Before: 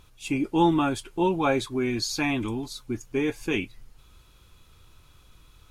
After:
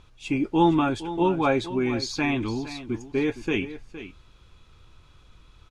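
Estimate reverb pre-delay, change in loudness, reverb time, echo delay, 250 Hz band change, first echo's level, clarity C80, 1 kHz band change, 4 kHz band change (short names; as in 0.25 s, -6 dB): none, +1.0 dB, none, 0.464 s, +1.5 dB, -13.5 dB, none, +1.5 dB, -1.0 dB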